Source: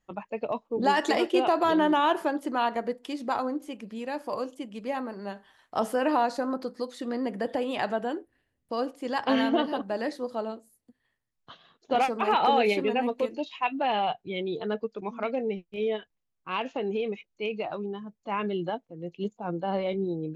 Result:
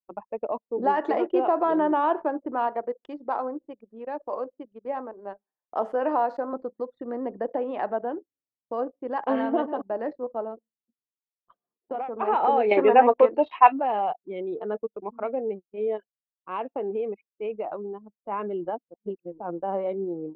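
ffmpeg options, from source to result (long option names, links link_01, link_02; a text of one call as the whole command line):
ffmpeg -i in.wav -filter_complex "[0:a]asettb=1/sr,asplit=3[link_01][link_02][link_03];[link_01]atrim=end=2.674[link_04];[link_02]atrim=start=2.67:end=6.53,asetpts=PTS-STARTPTS,afade=type=in:duration=0.004:curve=qsin,afade=type=out:start_time=3.856:duration=0.004:curve=qsin,bass=frequency=250:gain=-7,treble=frequency=4000:gain=6[link_05];[link_03]atrim=start=6.526[link_06];[link_04][link_05]acrossfade=duration=0.004:curve1=hsin:curve2=qsin[link_07];[link_07][link_06]acrossfade=duration=0.004:curve1=qsin:curve2=hsin,asettb=1/sr,asplit=3[link_08][link_09][link_10];[link_08]atrim=end=10.464[link_11];[link_09]atrim=start=10.46:end=12.16,asetpts=PTS-STARTPTS,afade=type=in:duration=0.004:curve=qsin,afade=type=out:start_time=1.696:duration=0.004:curve=qsin,acompressor=threshold=-28dB:ratio=6:attack=3.2:release=140:knee=1:detection=peak[link_12];[link_10]atrim=start=12.156[link_13];[link_11][link_12]acrossfade=duration=0.004:curve1=hsin:curve2=qsin[link_14];[link_14][link_13]acrossfade=duration=0.004:curve1=qsin:curve2=hsin,asettb=1/sr,asplit=3[link_15][link_16][link_17];[link_15]atrim=end=12.714[link_18];[link_16]atrim=start=12.71:end=13.8,asetpts=PTS-STARTPTS,afade=type=in:duration=0.004:curve=qsin,afade=type=out:start_time=1.086:duration=0.004:curve=qsin,equalizer=frequency=1400:width=0.31:gain=15[link_19];[link_17]atrim=start=13.796[link_20];[link_18][link_19]acrossfade=duration=0.004:curve1=hsin:curve2=qsin[link_21];[link_21][link_20]acrossfade=duration=0.004:curve1=qsin:curve2=hsin,asplit=3[link_22][link_23][link_24];[link_22]atrim=end=18.942[link_25];[link_23]atrim=start=18.938:end=19.402,asetpts=PTS-STARTPTS,areverse[link_26];[link_24]atrim=start=19.398[link_27];[link_25][link_26]acrossfade=duration=0.004:curve1=hsin:curve2=hsin[link_28];[link_28][link_27]acrossfade=duration=0.004:curve1=hsin:curve2=hsin,highpass=310,anlmdn=0.631,lowpass=1100,volume=2.5dB" out.wav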